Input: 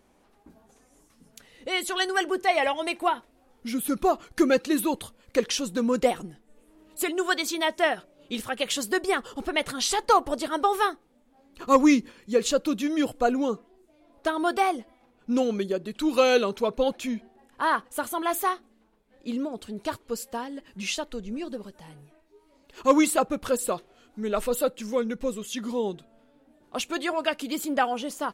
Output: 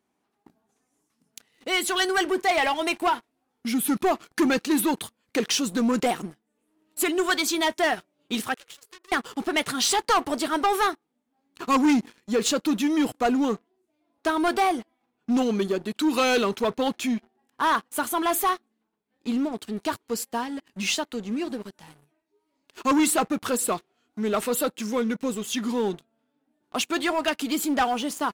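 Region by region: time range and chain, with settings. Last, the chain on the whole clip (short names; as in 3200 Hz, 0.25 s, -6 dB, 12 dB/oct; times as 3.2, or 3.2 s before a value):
8.54–9.12 compressor 4:1, threshold -36 dBFS + rippled Chebyshev high-pass 330 Hz, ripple 9 dB + core saturation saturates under 3900 Hz
whole clip: HPF 130 Hz 12 dB/oct; bell 540 Hz -9 dB 0.31 oct; sample leveller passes 3; gain -6 dB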